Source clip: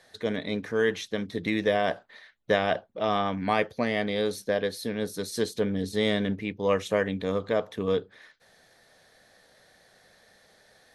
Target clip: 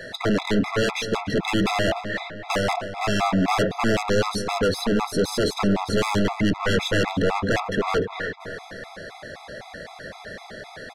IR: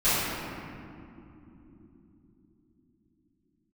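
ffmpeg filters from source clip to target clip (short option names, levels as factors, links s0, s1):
-filter_complex "[0:a]aeval=exprs='0.335*sin(PI/2*7.08*val(0)/0.335)':c=same,alimiter=limit=0.211:level=0:latency=1:release=173,aemphasis=mode=reproduction:type=75fm,asoftclip=type=tanh:threshold=0.0944,asplit=2[s0][s1];[s1]adelay=298,lowpass=f=3100:p=1,volume=0.299,asplit=2[s2][s3];[s3]adelay=298,lowpass=f=3100:p=1,volume=0.5,asplit=2[s4][s5];[s5]adelay=298,lowpass=f=3100:p=1,volume=0.5,asplit=2[s6][s7];[s7]adelay=298,lowpass=f=3100:p=1,volume=0.5,asplit=2[s8][s9];[s9]adelay=298,lowpass=f=3100:p=1,volume=0.5[s10];[s2][s4][s6][s8][s10]amix=inputs=5:normalize=0[s11];[s0][s11]amix=inputs=2:normalize=0,afftfilt=real='re*gt(sin(2*PI*3.9*pts/sr)*(1-2*mod(floor(b*sr/1024/670),2)),0)':imag='im*gt(sin(2*PI*3.9*pts/sr)*(1-2*mod(floor(b*sr/1024/670),2)),0)':win_size=1024:overlap=0.75,volume=1.5"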